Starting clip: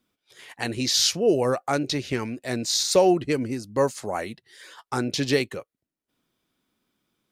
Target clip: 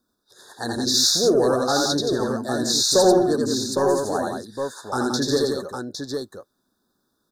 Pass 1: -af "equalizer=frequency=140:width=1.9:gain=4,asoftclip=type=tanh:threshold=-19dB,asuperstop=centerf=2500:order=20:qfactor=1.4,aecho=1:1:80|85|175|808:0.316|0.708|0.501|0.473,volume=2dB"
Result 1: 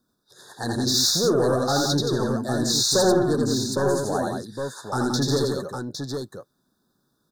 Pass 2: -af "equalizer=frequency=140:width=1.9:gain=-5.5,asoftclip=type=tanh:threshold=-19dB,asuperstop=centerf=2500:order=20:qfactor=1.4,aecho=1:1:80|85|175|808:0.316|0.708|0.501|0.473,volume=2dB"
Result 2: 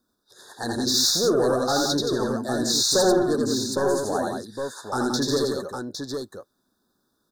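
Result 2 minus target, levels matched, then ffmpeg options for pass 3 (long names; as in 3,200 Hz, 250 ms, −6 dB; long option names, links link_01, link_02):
soft clipping: distortion +10 dB
-af "equalizer=frequency=140:width=1.9:gain=-5.5,asoftclip=type=tanh:threshold=-11dB,asuperstop=centerf=2500:order=20:qfactor=1.4,aecho=1:1:80|85|175|808:0.316|0.708|0.501|0.473,volume=2dB"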